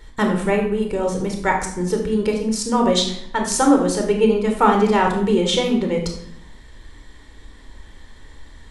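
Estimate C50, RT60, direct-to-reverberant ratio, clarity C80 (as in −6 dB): 5.5 dB, 0.70 s, 2.5 dB, 9.5 dB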